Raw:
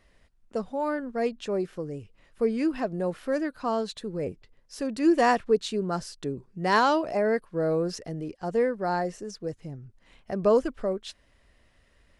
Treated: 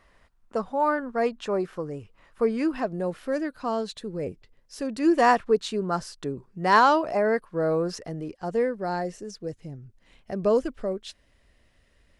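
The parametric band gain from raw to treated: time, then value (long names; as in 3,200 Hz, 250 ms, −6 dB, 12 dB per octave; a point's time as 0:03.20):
parametric band 1,100 Hz 1.3 octaves
0:02.42 +9.5 dB
0:03.11 −0.5 dB
0:04.77 −0.5 dB
0:05.35 +5.5 dB
0:08.14 +5.5 dB
0:08.79 −3 dB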